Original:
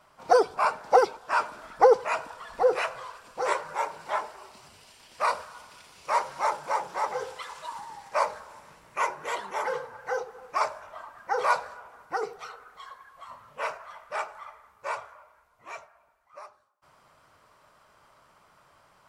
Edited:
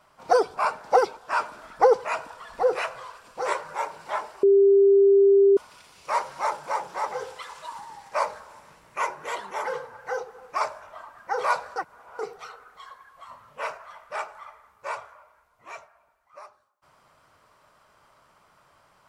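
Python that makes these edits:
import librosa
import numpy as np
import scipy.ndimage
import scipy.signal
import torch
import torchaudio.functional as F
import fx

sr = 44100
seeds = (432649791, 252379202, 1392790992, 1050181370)

y = fx.edit(x, sr, fx.bleep(start_s=4.43, length_s=1.14, hz=396.0, db=-13.0),
    fx.reverse_span(start_s=11.76, length_s=0.43), tone=tone)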